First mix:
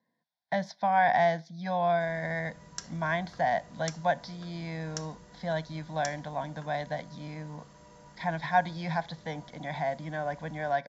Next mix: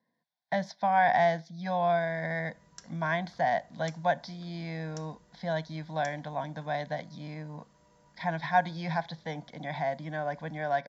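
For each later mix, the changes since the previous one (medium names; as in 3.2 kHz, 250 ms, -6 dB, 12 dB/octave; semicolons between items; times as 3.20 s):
background -9.5 dB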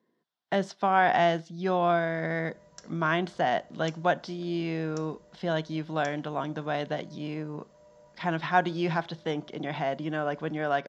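speech: remove static phaser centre 1.9 kHz, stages 8; background: add peaking EQ 580 Hz +14.5 dB 0.45 oct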